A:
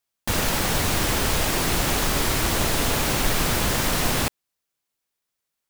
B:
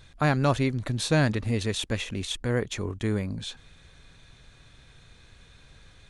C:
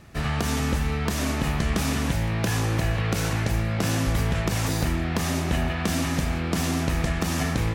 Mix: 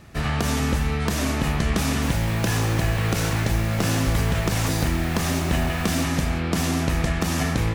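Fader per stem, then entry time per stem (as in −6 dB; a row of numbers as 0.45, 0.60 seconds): −14.5, −16.5, +2.0 decibels; 1.75, 0.00, 0.00 seconds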